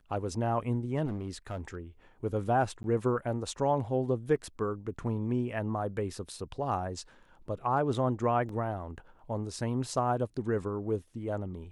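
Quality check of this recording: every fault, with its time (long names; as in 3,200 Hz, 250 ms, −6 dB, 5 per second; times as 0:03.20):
0:01.05–0:01.75: clipping −31 dBFS
0:02.83–0:02.84: drop-out 11 ms
0:08.49: drop-out 2.9 ms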